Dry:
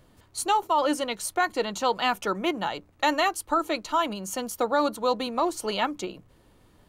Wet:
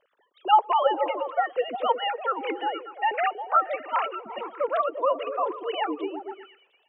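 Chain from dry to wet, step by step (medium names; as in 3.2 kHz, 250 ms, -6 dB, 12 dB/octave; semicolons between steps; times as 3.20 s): formants replaced by sine waves; repeats whose band climbs or falls 118 ms, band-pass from 240 Hz, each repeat 0.7 oct, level -3 dB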